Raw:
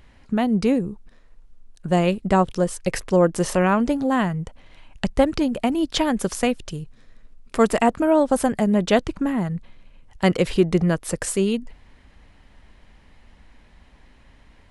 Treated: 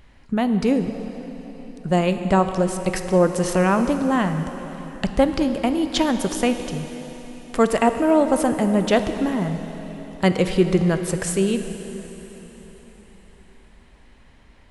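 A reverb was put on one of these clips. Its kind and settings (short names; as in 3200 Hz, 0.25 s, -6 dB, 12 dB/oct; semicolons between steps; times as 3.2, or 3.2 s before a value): plate-style reverb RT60 4.2 s, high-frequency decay 1×, DRR 7.5 dB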